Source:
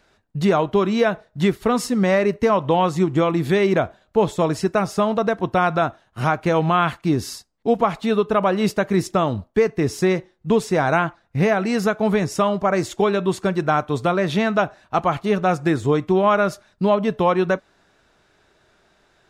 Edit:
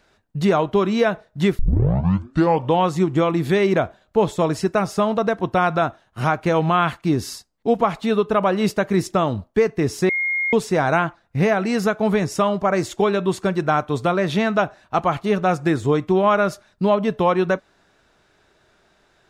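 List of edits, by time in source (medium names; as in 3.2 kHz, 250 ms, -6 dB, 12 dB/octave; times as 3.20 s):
1.59 s: tape start 1.14 s
10.09–10.53 s: bleep 2.14 kHz -19 dBFS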